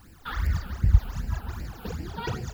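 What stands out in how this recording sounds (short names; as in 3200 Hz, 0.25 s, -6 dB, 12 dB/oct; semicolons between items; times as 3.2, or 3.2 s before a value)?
a quantiser's noise floor 10-bit, dither triangular; phasing stages 12, 2.6 Hz, lowest notch 100–1200 Hz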